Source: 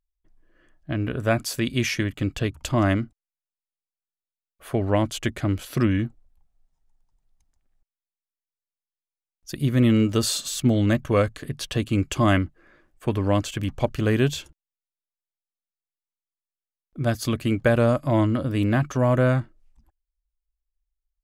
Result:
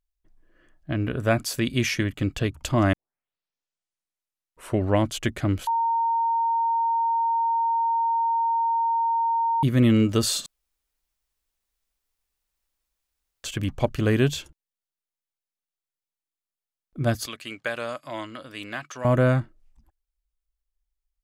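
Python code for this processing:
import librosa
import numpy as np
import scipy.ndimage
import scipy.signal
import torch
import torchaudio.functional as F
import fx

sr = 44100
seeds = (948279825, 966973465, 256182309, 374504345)

y = fx.bandpass_q(x, sr, hz=3900.0, q=0.51, at=(17.26, 19.05))
y = fx.edit(y, sr, fx.tape_start(start_s=2.93, length_s=1.97),
    fx.bleep(start_s=5.67, length_s=3.96, hz=920.0, db=-20.0),
    fx.room_tone_fill(start_s=10.46, length_s=2.98), tone=tone)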